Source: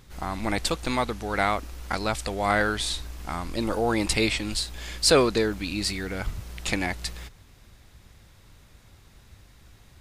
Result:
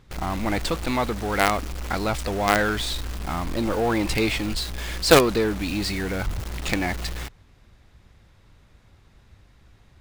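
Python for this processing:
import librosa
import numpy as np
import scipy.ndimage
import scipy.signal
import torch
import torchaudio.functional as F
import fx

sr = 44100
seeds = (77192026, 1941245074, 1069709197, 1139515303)

p1 = fx.lowpass(x, sr, hz=2900.0, slope=6)
p2 = fx.quant_companded(p1, sr, bits=2)
p3 = p1 + F.gain(torch.from_numpy(p2), -5.0).numpy()
y = F.gain(torch.from_numpy(p3), -1.0).numpy()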